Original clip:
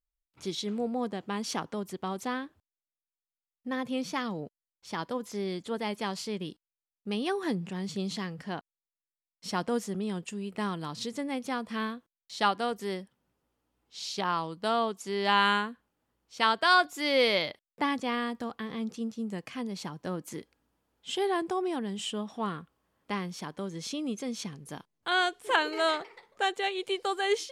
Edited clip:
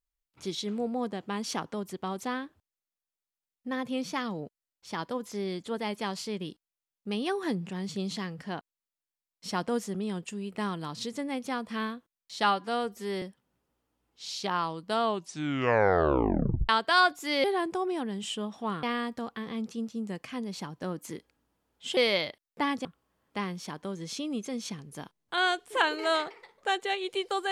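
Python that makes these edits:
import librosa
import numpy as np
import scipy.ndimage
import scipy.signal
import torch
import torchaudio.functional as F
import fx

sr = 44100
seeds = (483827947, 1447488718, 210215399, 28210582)

y = fx.edit(x, sr, fx.stretch_span(start_s=12.44, length_s=0.52, factor=1.5),
    fx.tape_stop(start_s=14.76, length_s=1.67),
    fx.swap(start_s=17.18, length_s=0.88, other_s=21.2, other_length_s=1.39), tone=tone)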